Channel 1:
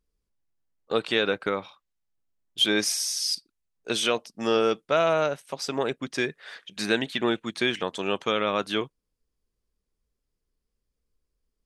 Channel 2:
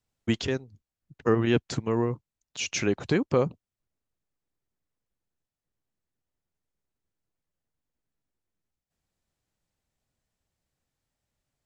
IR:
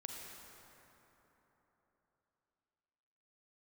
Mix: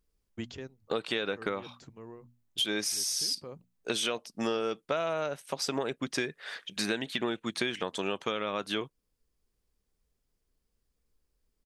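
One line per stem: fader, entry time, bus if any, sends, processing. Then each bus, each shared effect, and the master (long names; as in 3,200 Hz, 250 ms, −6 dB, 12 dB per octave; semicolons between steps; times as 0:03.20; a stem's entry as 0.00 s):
+1.5 dB, 0.00 s, no send, high-shelf EQ 11,000 Hz +4.5 dB
−8.5 dB, 0.10 s, no send, mains-hum notches 60/120/180/240 Hz; automatic ducking −12 dB, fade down 1.35 s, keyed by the first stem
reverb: not used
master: downward compressor 6 to 1, threshold −28 dBFS, peak gain reduction 12 dB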